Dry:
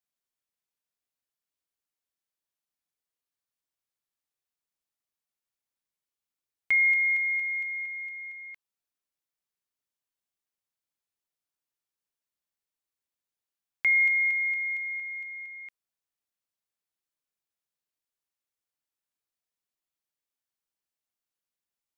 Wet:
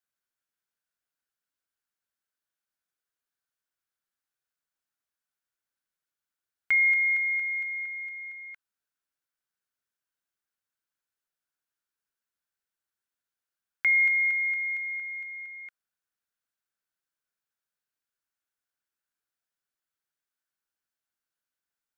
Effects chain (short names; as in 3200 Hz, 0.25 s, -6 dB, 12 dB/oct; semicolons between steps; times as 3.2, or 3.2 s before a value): bell 1500 Hz +11 dB 0.41 oct; gain -1.5 dB